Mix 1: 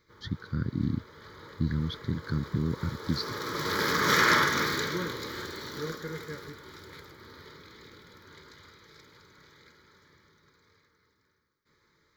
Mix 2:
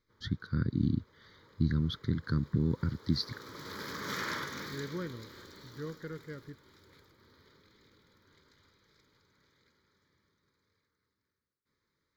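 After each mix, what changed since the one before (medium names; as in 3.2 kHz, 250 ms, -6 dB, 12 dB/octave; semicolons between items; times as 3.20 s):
background -12.0 dB; reverb: off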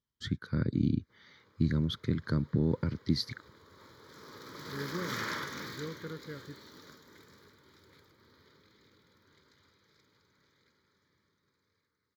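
first voice: remove static phaser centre 2.5 kHz, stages 6; background: entry +1.00 s; master: add high-pass 73 Hz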